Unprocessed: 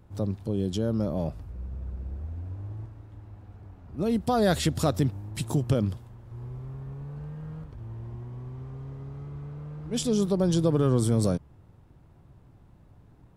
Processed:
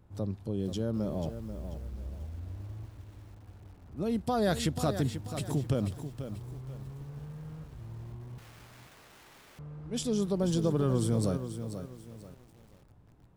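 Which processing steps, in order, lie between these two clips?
8.38–9.59 wrapped overs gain 46.5 dB; lo-fi delay 0.487 s, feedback 35%, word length 8-bit, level -9.5 dB; gain -5 dB

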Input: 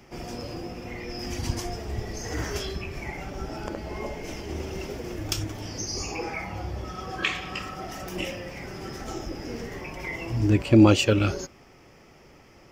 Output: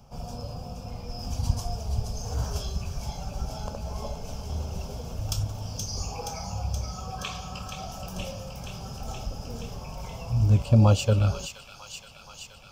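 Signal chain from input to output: low shelf 390 Hz +7.5 dB; fixed phaser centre 810 Hz, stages 4; on a send: thin delay 0.474 s, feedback 77%, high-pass 1800 Hz, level -6 dB; on the sum: gain -2 dB

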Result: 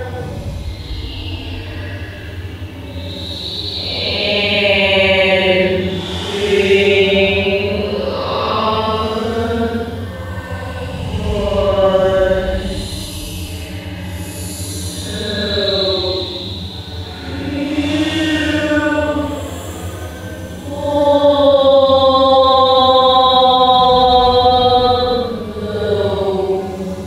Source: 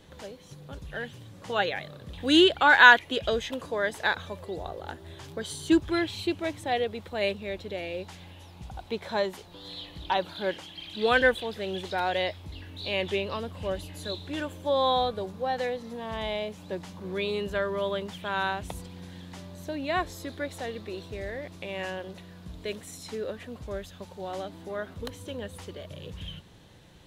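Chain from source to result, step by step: dark delay 1.141 s, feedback 66%, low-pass 1900 Hz, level -23.5 dB; Paulstretch 9.4×, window 0.10 s, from 12.43; maximiser +17 dB; gain -1 dB

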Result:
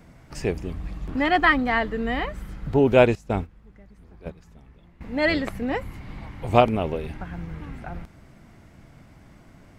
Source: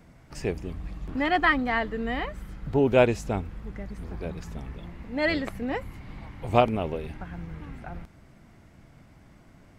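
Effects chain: 3.15–5.01 gate -30 dBFS, range -16 dB; gain +3.5 dB

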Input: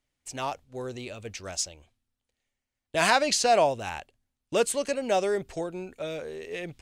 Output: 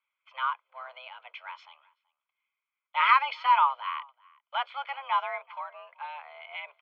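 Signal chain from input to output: octaver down 1 oct, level -4 dB; comb 1 ms, depth 80%; speakerphone echo 0.38 s, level -25 dB; mistuned SSB +270 Hz 480–2700 Hz

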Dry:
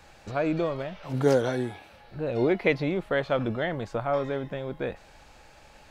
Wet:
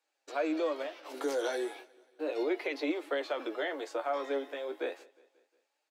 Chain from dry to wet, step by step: steep high-pass 280 Hz 96 dB/oct; gate -45 dBFS, range -26 dB; high shelf 3700 Hz +8 dB; limiter -20 dBFS, peak gain reduction 10.5 dB; flange 0.34 Hz, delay 6.2 ms, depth 8.3 ms, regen +38%; feedback echo 0.179 s, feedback 55%, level -24 dB

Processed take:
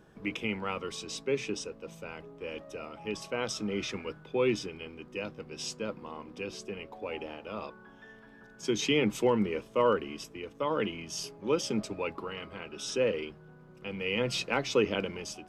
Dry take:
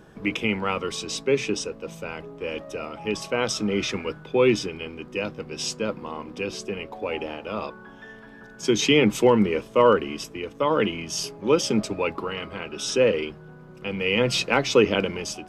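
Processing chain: gain -8.5 dB

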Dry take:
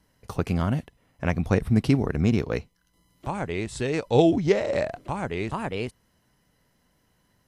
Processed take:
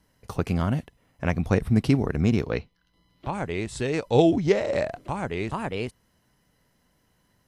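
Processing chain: 2.51–3.33 resonant high shelf 5500 Hz -10 dB, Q 1.5

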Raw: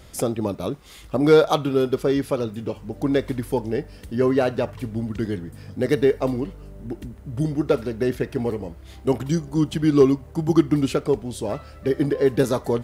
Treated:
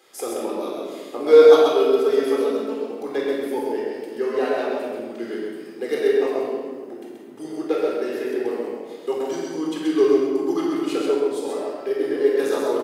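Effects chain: 1.32–2.86 comb 4.5 ms, depth 68%; HPF 330 Hz 24 dB/oct; echo 0.13 s -4 dB; shoebox room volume 1600 m³, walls mixed, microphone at 3.9 m; gain -7.5 dB

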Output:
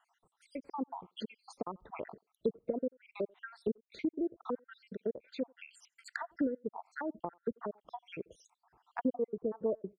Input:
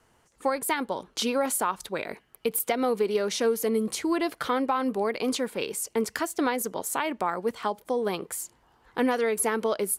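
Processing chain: random spectral dropouts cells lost 73%; high shelf 2400 Hz -6.5 dB; treble ducked by the level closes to 610 Hz, closed at -30.5 dBFS; LPF 8400 Hz; speakerphone echo 90 ms, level -28 dB; treble ducked by the level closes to 880 Hz, closed at -30.5 dBFS; gain -3 dB

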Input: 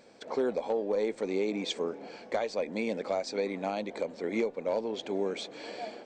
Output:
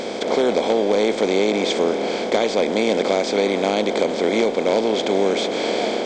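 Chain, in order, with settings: per-bin compression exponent 0.4; gain +7 dB

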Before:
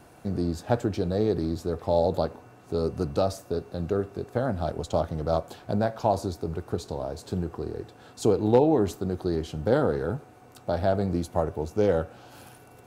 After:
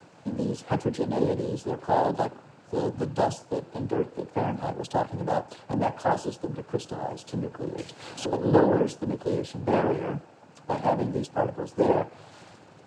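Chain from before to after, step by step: noise vocoder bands 8; 7.78–8.33 three-band squash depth 100%

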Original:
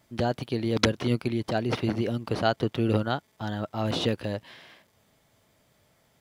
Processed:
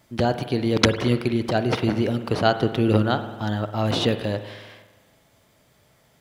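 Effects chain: spring tank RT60 1.3 s, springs 47 ms, chirp 70 ms, DRR 10 dB; gain +5 dB

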